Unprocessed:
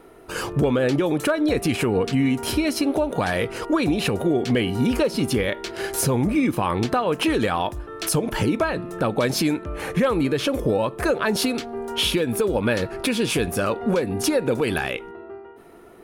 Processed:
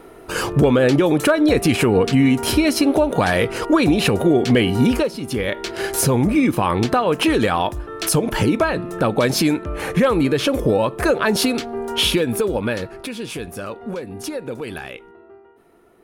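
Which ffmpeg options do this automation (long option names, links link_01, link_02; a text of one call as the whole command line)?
ffmpeg -i in.wav -af "volume=16.5dB,afade=type=out:start_time=4.84:duration=0.36:silence=0.237137,afade=type=in:start_time=5.2:duration=0.42:silence=0.281838,afade=type=out:start_time=12.11:duration=0.97:silence=0.281838" out.wav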